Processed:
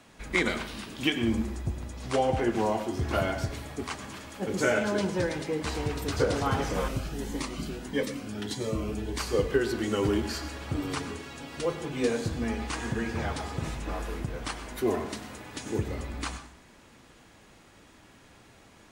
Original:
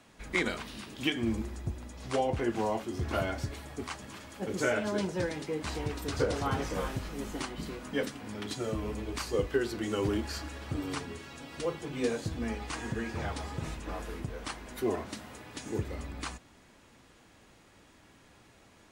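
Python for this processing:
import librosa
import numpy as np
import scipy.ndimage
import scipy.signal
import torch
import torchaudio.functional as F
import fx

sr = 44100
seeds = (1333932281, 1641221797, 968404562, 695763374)

y = fx.rev_plate(x, sr, seeds[0], rt60_s=0.53, hf_ratio=0.75, predelay_ms=85, drr_db=10.0)
y = fx.notch_cascade(y, sr, direction='rising', hz=1.6, at=(6.88, 9.19))
y = y * 10.0 ** (3.5 / 20.0)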